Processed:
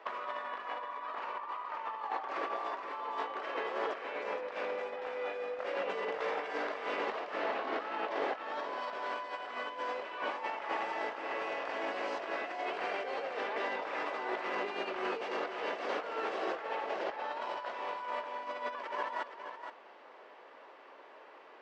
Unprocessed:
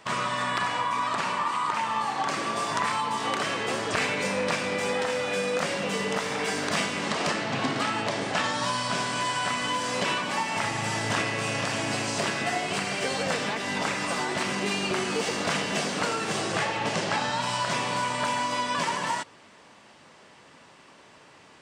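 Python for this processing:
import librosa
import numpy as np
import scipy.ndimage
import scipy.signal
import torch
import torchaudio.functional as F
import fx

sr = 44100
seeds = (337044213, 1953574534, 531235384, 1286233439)

y = scipy.signal.sosfilt(scipy.signal.butter(4, 400.0, 'highpass', fs=sr, output='sos'), x)
y = fx.over_compress(y, sr, threshold_db=-32.0, ratio=-0.5)
y = fx.spacing_loss(y, sr, db_at_10k=42)
y = y + 10.0 ** (-8.5 / 20.0) * np.pad(y, (int(470 * sr / 1000.0), 0))[:len(y)]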